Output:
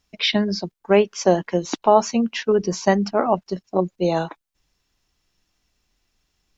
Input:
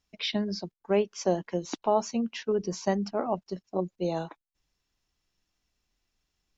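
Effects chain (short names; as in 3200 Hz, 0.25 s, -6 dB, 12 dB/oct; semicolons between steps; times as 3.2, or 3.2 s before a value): dynamic EQ 1700 Hz, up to +5 dB, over -41 dBFS, Q 0.73; gain +8.5 dB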